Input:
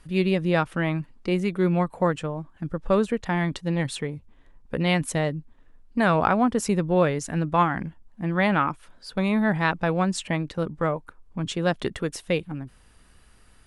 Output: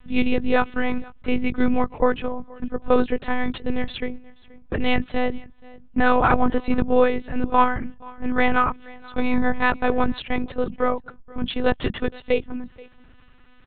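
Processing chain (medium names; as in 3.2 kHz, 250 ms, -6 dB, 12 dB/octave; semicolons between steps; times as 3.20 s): on a send: delay 478 ms -23.5 dB; on the sum: monotone LPC vocoder at 8 kHz 250 Hz; trim +4 dB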